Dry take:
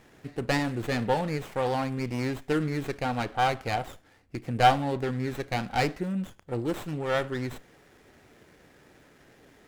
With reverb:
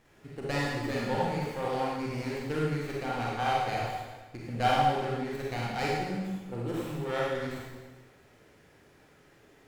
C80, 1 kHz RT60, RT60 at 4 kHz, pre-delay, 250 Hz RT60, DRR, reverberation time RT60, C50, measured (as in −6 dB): 1.5 dB, 1.3 s, 1.2 s, 28 ms, 1.3 s, −5.0 dB, 1.3 s, −2.5 dB